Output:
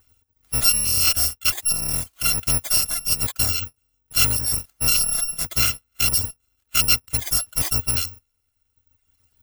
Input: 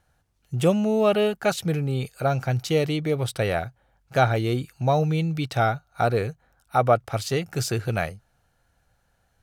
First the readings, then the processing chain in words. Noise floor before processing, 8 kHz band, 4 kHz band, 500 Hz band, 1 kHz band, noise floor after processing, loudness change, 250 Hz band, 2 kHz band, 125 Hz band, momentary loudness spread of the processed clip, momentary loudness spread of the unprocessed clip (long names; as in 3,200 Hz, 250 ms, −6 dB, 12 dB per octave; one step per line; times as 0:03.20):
−68 dBFS, +19.0 dB, +12.5 dB, −18.5 dB, −10.5 dB, −73 dBFS, +5.0 dB, −12.5 dB, +1.5 dB, −6.5 dB, 7 LU, 7 LU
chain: samples in bit-reversed order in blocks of 256 samples
reverb reduction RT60 1.3 s
parametric band 82 Hz +11.5 dB 0.8 octaves
comb filter 3.4 ms, depth 47%
in parallel at −0.5 dB: brickwall limiter −14 dBFS, peak gain reduction 10 dB
on the sum: bad sample-rate conversion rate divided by 2×, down none, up zero stuff
level −5.5 dB